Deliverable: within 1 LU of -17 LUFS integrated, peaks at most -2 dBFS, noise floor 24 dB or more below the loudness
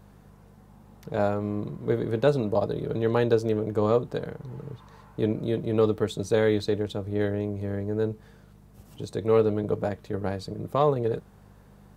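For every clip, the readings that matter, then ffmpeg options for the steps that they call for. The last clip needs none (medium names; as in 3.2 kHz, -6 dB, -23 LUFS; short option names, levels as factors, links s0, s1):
hum 50 Hz; highest harmonic 200 Hz; hum level -50 dBFS; loudness -27.0 LUFS; peak level -9.0 dBFS; loudness target -17.0 LUFS
-> -af "bandreject=f=50:t=h:w=4,bandreject=f=100:t=h:w=4,bandreject=f=150:t=h:w=4,bandreject=f=200:t=h:w=4"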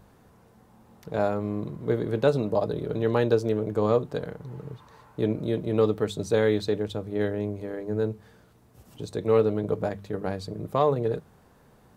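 hum not found; loudness -27.0 LUFS; peak level -9.0 dBFS; loudness target -17.0 LUFS
-> -af "volume=3.16,alimiter=limit=0.794:level=0:latency=1"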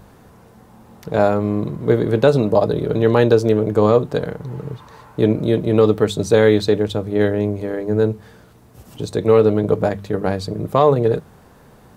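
loudness -17.5 LUFS; peak level -2.0 dBFS; noise floor -48 dBFS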